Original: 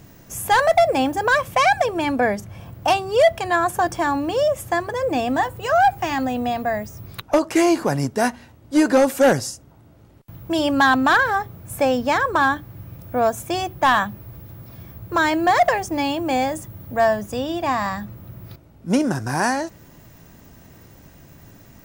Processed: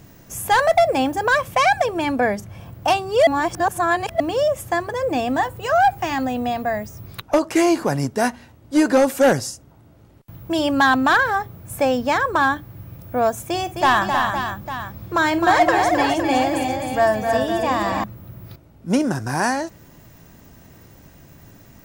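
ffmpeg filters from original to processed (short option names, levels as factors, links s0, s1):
-filter_complex "[0:a]asettb=1/sr,asplit=3[s0][s1][s2];[s0]atrim=end=13.454[s3];[s1]atrim=start=13.45:end=18.04,asetpts=PTS-STARTPTS,afade=t=in:d=0.004:c=qsin,afade=t=out:st=4.586:d=0.004:c=qsin,aecho=1:1:51|261|315|511|851:0.158|0.473|0.501|0.355|0.224,atrim=end_sample=202419[s4];[s2]atrim=start=18.036[s5];[s3][s4]acrossfade=d=0.004:c1=hsin:c2=qsin[s6];[s6][s5]acrossfade=d=0.004:c1=qsin:c2=hsin,asplit=3[s7][s8][s9];[s7]atrim=end=3.272[s10];[s8]atrim=start=3.268:end=4.202,asetpts=PTS-STARTPTS,areverse[s11];[s9]atrim=start=4.198[s12];[s10][s11]acrossfade=d=0.004:c1=hsin:c2=hsin[s13];[s13][s12]acrossfade=d=0.004:c1=hsin:c2=hsin"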